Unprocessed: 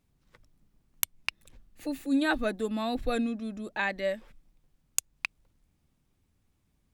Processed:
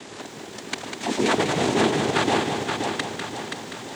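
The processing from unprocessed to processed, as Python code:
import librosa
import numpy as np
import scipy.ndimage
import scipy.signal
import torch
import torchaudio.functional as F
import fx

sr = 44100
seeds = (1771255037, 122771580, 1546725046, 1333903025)

p1 = fx.bin_compress(x, sr, power=0.4)
p2 = fx.stretch_grains(p1, sr, factor=0.57, grain_ms=46.0)
p3 = fx.noise_vocoder(p2, sr, seeds[0], bands=6)
p4 = p3 + fx.echo_feedback(p3, sr, ms=526, feedback_pct=47, wet_db=-5.0, dry=0)
p5 = fx.echo_crushed(p4, sr, ms=198, feedback_pct=35, bits=9, wet_db=-6.0)
y = F.gain(torch.from_numpy(p5), 3.5).numpy()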